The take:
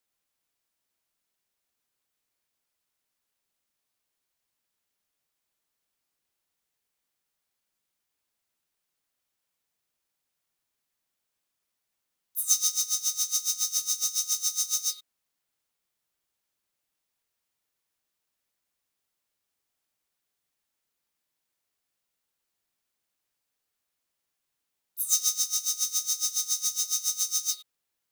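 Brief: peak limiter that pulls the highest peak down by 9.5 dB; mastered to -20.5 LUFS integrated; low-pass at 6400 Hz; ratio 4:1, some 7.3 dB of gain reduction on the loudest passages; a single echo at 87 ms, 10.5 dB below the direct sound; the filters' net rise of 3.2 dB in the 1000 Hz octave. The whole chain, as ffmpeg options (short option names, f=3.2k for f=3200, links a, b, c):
-af "lowpass=6.4k,equalizer=f=1k:t=o:g=4.5,acompressor=threshold=-31dB:ratio=4,alimiter=level_in=4.5dB:limit=-24dB:level=0:latency=1,volume=-4.5dB,aecho=1:1:87:0.299,volume=16dB"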